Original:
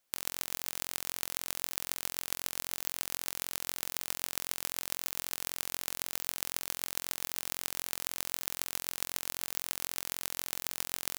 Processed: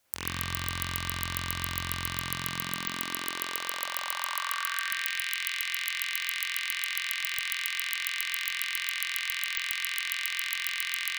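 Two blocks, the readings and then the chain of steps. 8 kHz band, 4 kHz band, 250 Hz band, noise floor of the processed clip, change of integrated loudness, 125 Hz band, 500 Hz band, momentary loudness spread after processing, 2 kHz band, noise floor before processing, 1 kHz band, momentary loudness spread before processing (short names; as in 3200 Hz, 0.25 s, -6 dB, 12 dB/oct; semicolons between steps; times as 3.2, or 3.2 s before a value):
-0.5 dB, +8.0 dB, +6.5 dB, -36 dBFS, +4.5 dB, +13.5 dB, -1.5 dB, 2 LU, +13.5 dB, -78 dBFS, +8.5 dB, 0 LU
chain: added harmonics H 8 -10 dB, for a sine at -3.5 dBFS; high-pass sweep 70 Hz -> 2100 Hz, 1.86–5.03; spring tank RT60 1.7 s, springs 46 ms, chirp 55 ms, DRR -7.5 dB; gain +5.5 dB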